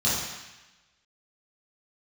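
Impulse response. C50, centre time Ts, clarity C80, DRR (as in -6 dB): 0.0 dB, 81 ms, 2.5 dB, -11.0 dB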